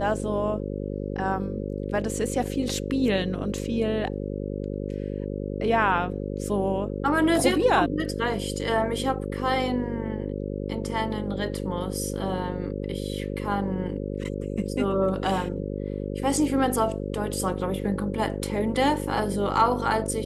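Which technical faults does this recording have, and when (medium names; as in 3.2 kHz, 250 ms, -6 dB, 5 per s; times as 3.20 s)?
buzz 50 Hz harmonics 11 -31 dBFS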